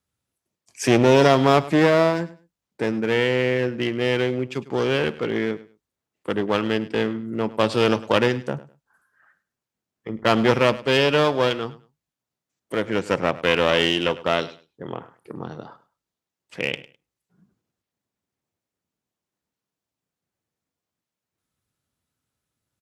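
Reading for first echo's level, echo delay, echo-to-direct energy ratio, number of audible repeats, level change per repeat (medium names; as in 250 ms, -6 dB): -18.0 dB, 103 ms, -18.0 dB, 2, -13.5 dB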